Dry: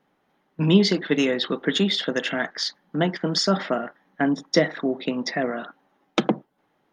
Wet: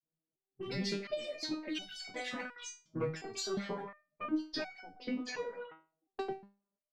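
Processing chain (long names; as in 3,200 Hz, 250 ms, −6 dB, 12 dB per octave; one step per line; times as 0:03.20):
loose part that buzzes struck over −18 dBFS, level −27 dBFS
in parallel at −11.5 dB: asymmetric clip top −28 dBFS
on the sum: granular cloud 100 ms, grains 28 per second, spray 11 ms, pitch spread up and down by 7 semitones
noise reduction from a noise print of the clip's start 13 dB
low-pass that shuts in the quiet parts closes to 350 Hz, open at −22 dBFS
downward compressor 2 to 1, threshold −25 dBFS, peak gain reduction 7 dB
step-sequenced resonator 2.8 Hz 160–750 Hz
level +4 dB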